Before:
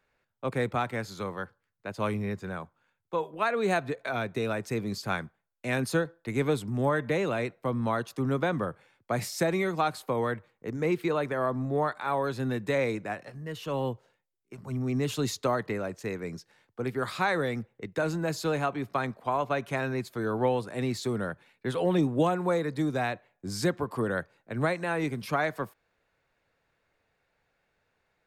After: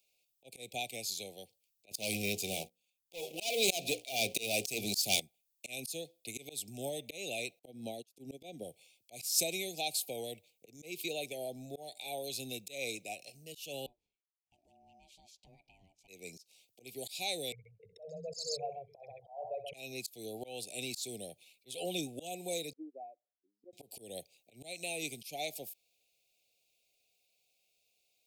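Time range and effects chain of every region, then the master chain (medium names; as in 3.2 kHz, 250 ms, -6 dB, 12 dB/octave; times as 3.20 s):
1.91–5.20 s: hum notches 60/120/180/240/300/360/420/480/540 Hz + waveshaping leveller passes 3
7.59–8.65 s: peaking EQ 280 Hz +9 dB 2.7 oct + upward expansion 2.5:1, over -39 dBFS
13.86–16.08 s: compression 2:1, threshold -40 dBFS + band-pass filter 620 Hz, Q 1.8 + ring modulator 480 Hz
17.52–19.74 s: resonances exaggerated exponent 3 + Chebyshev band-stop 180–440 Hz, order 4 + multi-tap echo 64/132 ms -11/-6.5 dB
22.73–23.73 s: spectral contrast enhancement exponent 1.7 + Chebyshev band-pass 300–1200 Hz, order 3 + upward expansion 2.5:1, over -38 dBFS
whole clip: Chebyshev band-stop 750–2400 Hz, order 4; pre-emphasis filter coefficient 0.97; slow attack 190 ms; trim +11.5 dB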